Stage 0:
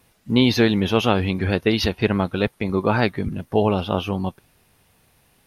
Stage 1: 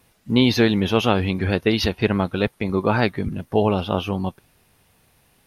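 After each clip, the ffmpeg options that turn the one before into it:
-af anull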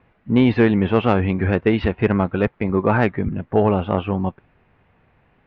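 -af "lowpass=f=2300:w=0.5412,lowpass=f=2300:w=1.3066,acontrast=36,volume=0.75"

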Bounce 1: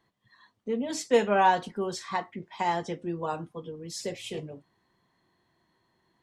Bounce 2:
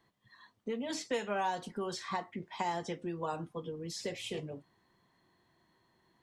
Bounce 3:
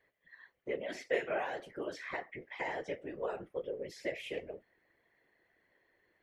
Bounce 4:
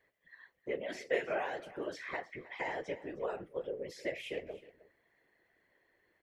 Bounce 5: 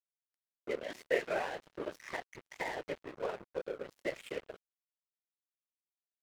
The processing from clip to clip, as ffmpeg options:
-filter_complex "[0:a]acrossover=split=910|4900[s0][s1][s2];[s0]acompressor=threshold=0.0158:ratio=4[s3];[s1]acompressor=threshold=0.01:ratio=4[s4];[s2]acompressor=threshold=0.00355:ratio=4[s5];[s3][s4][s5]amix=inputs=3:normalize=0"
-af "equalizer=f=125:t=o:w=1:g=-9,equalizer=f=250:t=o:w=1:g=-12,equalizer=f=500:t=o:w=1:g=11,equalizer=f=1000:t=o:w=1:g=-12,equalizer=f=2000:t=o:w=1:g=12,equalizer=f=4000:t=o:w=1:g=-8,equalizer=f=8000:t=o:w=1:g=-11,afftfilt=real='hypot(re,im)*cos(2*PI*random(0))':imag='hypot(re,im)*sin(2*PI*random(1))':win_size=512:overlap=0.75,volume=1.58"
-af "aecho=1:1:312:0.119"
-af "aeval=exprs='sgn(val(0))*max(abs(val(0))-0.00596,0)':c=same,volume=1.33"

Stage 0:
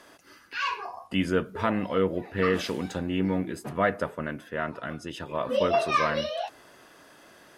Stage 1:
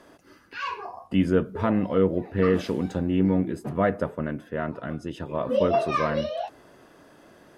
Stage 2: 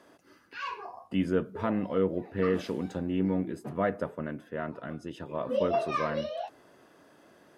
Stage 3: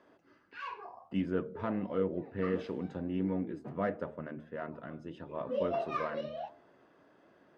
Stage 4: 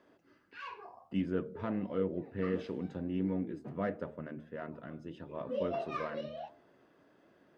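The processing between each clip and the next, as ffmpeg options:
-af "tiltshelf=f=860:g=6"
-af "highpass=f=130:p=1,volume=0.562"
-af "bandreject=f=76.59:t=h:w=4,bandreject=f=153.18:t=h:w=4,bandreject=f=229.77:t=h:w=4,bandreject=f=306.36:t=h:w=4,bandreject=f=382.95:t=h:w=4,bandreject=f=459.54:t=h:w=4,bandreject=f=536.13:t=h:w=4,bandreject=f=612.72:t=h:w=4,bandreject=f=689.31:t=h:w=4,bandreject=f=765.9:t=h:w=4,bandreject=f=842.49:t=h:w=4,adynamicsmooth=sensitivity=1.5:basefreq=3700,flanger=delay=1.8:depth=6.8:regen=83:speed=1.5:shape=triangular"
-af "equalizer=f=960:t=o:w=1.8:g=-4"

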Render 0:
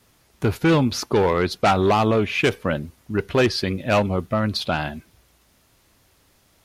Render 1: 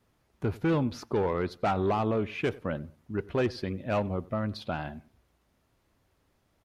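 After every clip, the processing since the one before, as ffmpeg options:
-filter_complex "[0:a]highshelf=f=2500:g=-11.5,asplit=2[s0][s1];[s1]adelay=94,lowpass=f=2000:p=1,volume=0.0891,asplit=2[s2][s3];[s3]adelay=94,lowpass=f=2000:p=1,volume=0.32[s4];[s0][s2][s4]amix=inputs=3:normalize=0,volume=0.376"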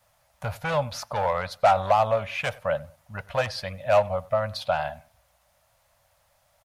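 -af "firequalizer=gain_entry='entry(130,0);entry(360,-28);entry(560,12);entry(1100,7);entry(2900,7);entry(8500,13)':delay=0.05:min_phase=1"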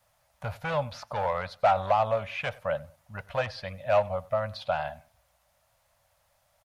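-filter_complex "[0:a]acrossover=split=4700[s0][s1];[s1]acompressor=threshold=0.002:ratio=4:attack=1:release=60[s2];[s0][s2]amix=inputs=2:normalize=0,volume=0.668"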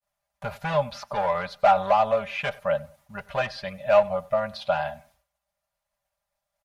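-af "agate=range=0.0224:threshold=0.00141:ratio=3:detection=peak,aecho=1:1:5:0.69,volume=1.26"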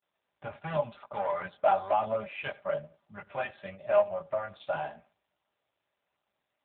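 -af "flanger=delay=17.5:depth=3.6:speed=1,volume=0.708" -ar 8000 -c:a libopencore_amrnb -b:a 7400

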